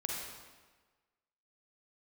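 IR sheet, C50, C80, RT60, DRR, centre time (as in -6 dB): -1.5 dB, 1.5 dB, 1.4 s, -2.5 dB, 85 ms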